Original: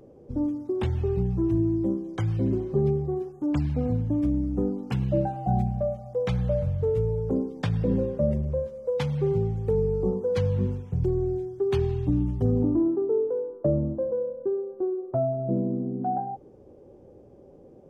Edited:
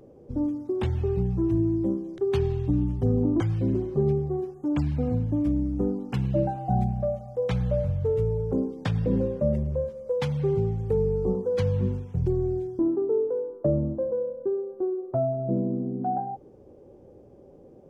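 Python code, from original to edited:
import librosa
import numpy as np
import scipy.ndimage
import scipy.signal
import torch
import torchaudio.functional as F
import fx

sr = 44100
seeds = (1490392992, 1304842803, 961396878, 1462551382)

y = fx.edit(x, sr, fx.move(start_s=11.57, length_s=1.22, to_s=2.18), tone=tone)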